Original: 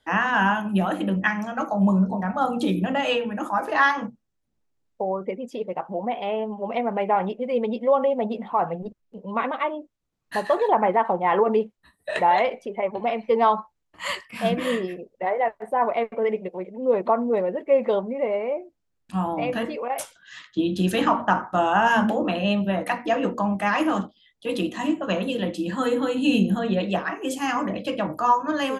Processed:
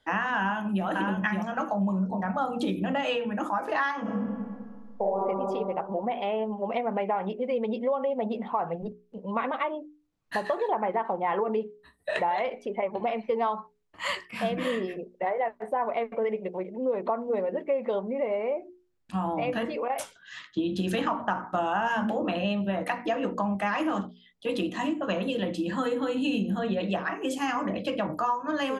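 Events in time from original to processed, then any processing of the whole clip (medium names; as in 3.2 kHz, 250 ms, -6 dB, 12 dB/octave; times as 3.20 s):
0.38–0.85 s: echo throw 570 ms, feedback 10%, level -5 dB
4.01–5.24 s: reverb throw, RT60 1.9 s, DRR -7.5 dB
whole clip: treble shelf 8.3 kHz -8.5 dB; hum notches 60/120/180/240/300/360/420 Hz; compression 4:1, threshold -25 dBFS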